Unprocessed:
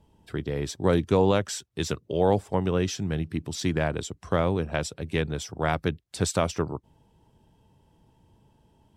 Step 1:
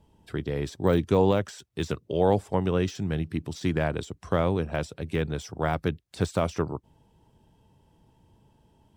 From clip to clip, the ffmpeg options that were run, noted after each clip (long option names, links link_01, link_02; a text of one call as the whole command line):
ffmpeg -i in.wav -af "deesser=0.95" out.wav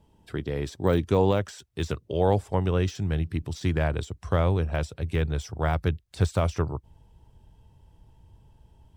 ffmpeg -i in.wav -af "asubboost=boost=5:cutoff=93" out.wav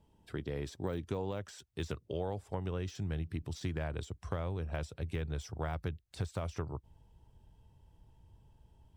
ffmpeg -i in.wav -af "acompressor=threshold=-26dB:ratio=6,volume=-6.5dB" out.wav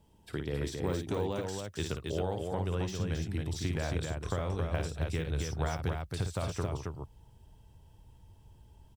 ffmpeg -i in.wav -af "highshelf=frequency=4100:gain=6,aecho=1:1:55.39|271.1:0.447|0.631,volume=2.5dB" out.wav